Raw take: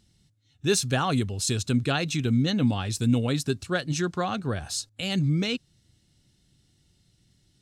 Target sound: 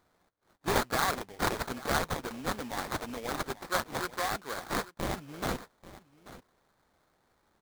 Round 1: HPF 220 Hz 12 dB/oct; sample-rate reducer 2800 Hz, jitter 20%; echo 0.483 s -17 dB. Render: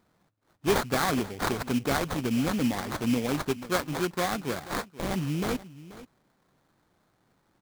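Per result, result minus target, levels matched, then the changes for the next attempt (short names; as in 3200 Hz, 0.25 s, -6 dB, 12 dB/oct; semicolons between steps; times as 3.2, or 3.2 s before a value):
echo 0.354 s early; 250 Hz band +6.0 dB
change: echo 0.837 s -17 dB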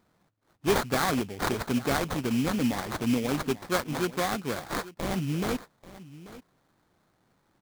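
250 Hz band +6.0 dB
change: HPF 730 Hz 12 dB/oct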